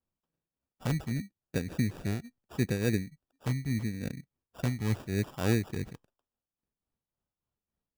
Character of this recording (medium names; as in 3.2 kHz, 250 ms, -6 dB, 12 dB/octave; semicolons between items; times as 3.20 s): phasing stages 2, 0.79 Hz, lowest notch 560–1800 Hz; aliases and images of a low sample rate 2.1 kHz, jitter 0%; tremolo triangle 3.5 Hz, depth 65%